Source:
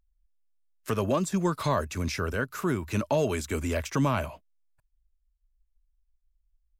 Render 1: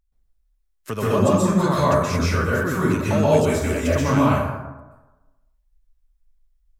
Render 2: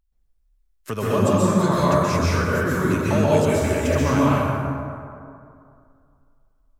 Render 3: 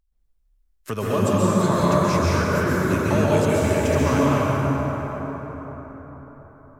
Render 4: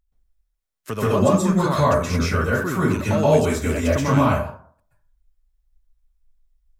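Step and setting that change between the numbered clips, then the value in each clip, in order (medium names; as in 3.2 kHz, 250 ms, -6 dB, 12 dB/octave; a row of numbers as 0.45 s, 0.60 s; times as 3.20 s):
plate-style reverb, RT60: 1.1 s, 2.4 s, 5 s, 0.52 s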